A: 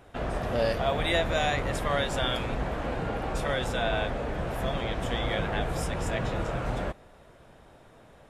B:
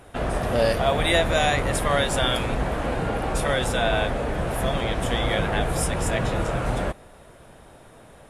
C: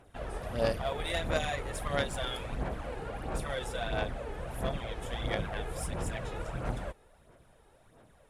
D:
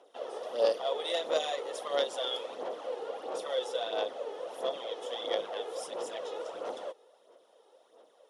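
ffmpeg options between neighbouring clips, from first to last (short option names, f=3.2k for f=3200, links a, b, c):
-af "equalizer=f=10k:w=1.8:g=10.5,volume=5.5dB"
-af "aphaser=in_gain=1:out_gain=1:delay=2.4:decay=0.48:speed=1.5:type=sinusoidal,aeval=exprs='0.708*(cos(1*acos(clip(val(0)/0.708,-1,1)))-cos(1*PI/2))+0.126*(cos(3*acos(clip(val(0)/0.708,-1,1)))-cos(3*PI/2))':c=same,volume=-8.5dB"
-af "highpass=f=360:w=0.5412,highpass=f=360:w=1.3066,equalizer=f=500:t=q:w=4:g=8,equalizer=f=1.6k:t=q:w=4:g=-9,equalizer=f=2.3k:t=q:w=4:g=-9,equalizer=f=3.3k:t=q:w=4:g=6,equalizer=f=5.6k:t=q:w=4:g=5,equalizer=f=8k:t=q:w=4:g=-7,lowpass=f=9.5k:w=0.5412,lowpass=f=9.5k:w=1.3066"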